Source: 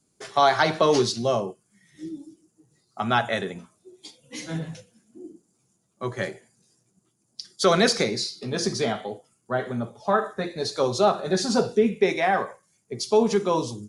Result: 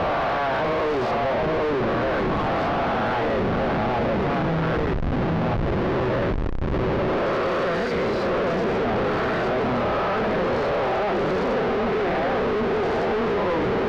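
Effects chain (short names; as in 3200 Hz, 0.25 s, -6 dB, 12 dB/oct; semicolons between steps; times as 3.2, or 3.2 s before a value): spectral swells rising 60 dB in 1.90 s; bell 120 Hz -3.5 dB 0.64 oct; echo with dull and thin repeats by turns 0.783 s, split 1200 Hz, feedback 70%, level -4.5 dB; Schmitt trigger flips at -28 dBFS; LPF 1800 Hz 12 dB/oct; bell 520 Hz +3.5 dB 0.23 oct; sample leveller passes 1; on a send at -19.5 dB: reverb RT60 1.1 s, pre-delay 17 ms; on the sum: gain -4.5 dB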